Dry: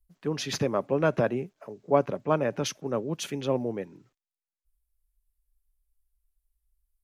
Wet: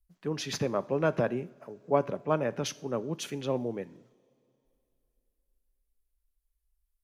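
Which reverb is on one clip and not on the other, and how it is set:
coupled-rooms reverb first 0.53 s, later 3.1 s, from −20 dB, DRR 15.5 dB
level −3 dB

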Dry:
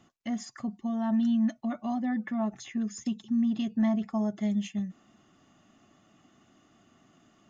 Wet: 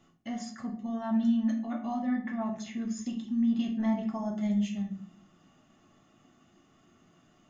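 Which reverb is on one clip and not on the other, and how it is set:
rectangular room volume 65 cubic metres, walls mixed, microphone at 0.68 metres
level −4 dB

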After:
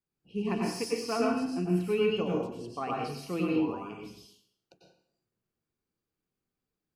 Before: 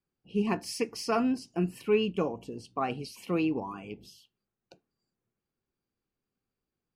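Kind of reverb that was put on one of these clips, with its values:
dense smooth reverb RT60 0.65 s, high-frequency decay 0.9×, pre-delay 85 ms, DRR −2.5 dB
level −5 dB

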